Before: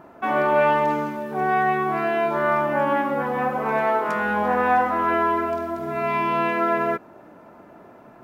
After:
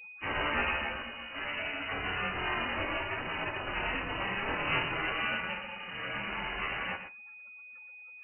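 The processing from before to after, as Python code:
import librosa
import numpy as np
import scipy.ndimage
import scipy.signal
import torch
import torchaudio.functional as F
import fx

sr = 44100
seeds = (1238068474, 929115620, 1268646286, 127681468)

p1 = fx.tracing_dist(x, sr, depth_ms=0.39)
p2 = fx.add_hum(p1, sr, base_hz=50, snr_db=34)
p3 = fx.spec_gate(p2, sr, threshold_db=-20, keep='weak')
p4 = p3 + 10.0 ** (-50.0 / 20.0) * np.sin(2.0 * np.pi * 410.0 * np.arange(len(p3)) / sr)
p5 = fx.spec_gate(p4, sr, threshold_db=-25, keep='strong')
p6 = 10.0 ** (-28.5 / 20.0) * (np.abs((p5 / 10.0 ** (-28.5 / 20.0) + 3.0) % 4.0 - 2.0) - 1.0)
p7 = p5 + (p6 * librosa.db_to_amplitude(-6.5))
p8 = p7 + 10.0 ** (-10.0 / 20.0) * np.pad(p7, (int(118 * sr / 1000.0), 0))[:len(p7)]
p9 = fx.rev_gated(p8, sr, seeds[0], gate_ms=90, shape='falling', drr_db=11.0)
y = fx.freq_invert(p9, sr, carrier_hz=2900)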